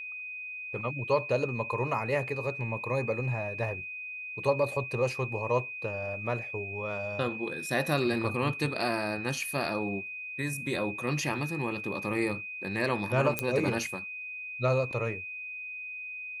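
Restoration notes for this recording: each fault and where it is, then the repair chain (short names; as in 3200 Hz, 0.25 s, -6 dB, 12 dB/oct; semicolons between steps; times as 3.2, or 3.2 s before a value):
tone 2500 Hz -37 dBFS
13.39 pop -11 dBFS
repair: de-click; notch 2500 Hz, Q 30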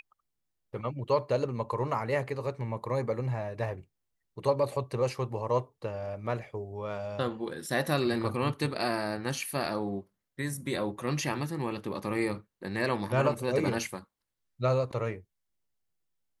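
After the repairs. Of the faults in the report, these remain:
13.39 pop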